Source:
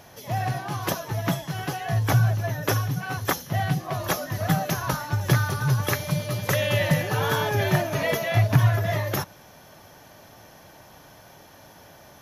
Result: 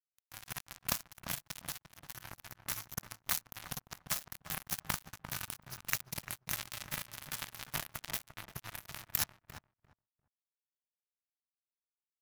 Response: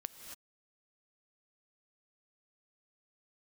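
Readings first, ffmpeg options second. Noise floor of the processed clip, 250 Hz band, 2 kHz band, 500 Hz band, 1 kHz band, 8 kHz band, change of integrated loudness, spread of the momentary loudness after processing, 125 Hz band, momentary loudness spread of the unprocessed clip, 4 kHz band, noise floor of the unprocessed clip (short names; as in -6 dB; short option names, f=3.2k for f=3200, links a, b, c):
under -85 dBFS, -23.5 dB, -15.5 dB, -27.5 dB, -19.0 dB, -5.5 dB, -14.5 dB, 12 LU, -28.5 dB, 8 LU, -10.5 dB, -50 dBFS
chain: -filter_complex "[0:a]crystalizer=i=1.5:c=0,areverse,acompressor=threshold=-31dB:ratio=12,areverse,acrusher=bits=3:mix=0:aa=0.5,equalizer=f=430:t=o:w=1.3:g=-12,asplit=2[a][b];[b]adelay=347,lowpass=f=1.2k:p=1,volume=-7.5dB,asplit=2[c][d];[d]adelay=347,lowpass=f=1.2k:p=1,volume=0.17,asplit=2[e][f];[f]adelay=347,lowpass=f=1.2k:p=1,volume=0.17[g];[a][c][e][g]amix=inputs=4:normalize=0,volume=8dB"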